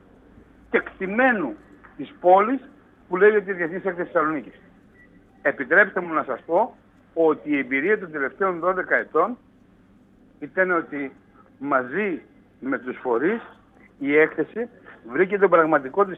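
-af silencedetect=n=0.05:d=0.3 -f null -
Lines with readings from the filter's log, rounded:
silence_start: 0.00
silence_end: 0.74 | silence_duration: 0.74
silence_start: 1.51
silence_end: 2.00 | silence_duration: 0.49
silence_start: 2.57
silence_end: 3.12 | silence_duration: 0.55
silence_start: 4.39
silence_end: 5.45 | silence_duration: 1.07
silence_start: 6.65
silence_end: 7.17 | silence_duration: 0.51
silence_start: 9.33
silence_end: 10.43 | silence_duration: 1.10
silence_start: 11.07
silence_end: 11.64 | silence_duration: 0.57
silence_start: 12.15
silence_end: 12.64 | silence_duration: 0.49
silence_start: 13.38
silence_end: 14.02 | silence_duration: 0.64
silence_start: 14.64
silence_end: 15.12 | silence_duration: 0.48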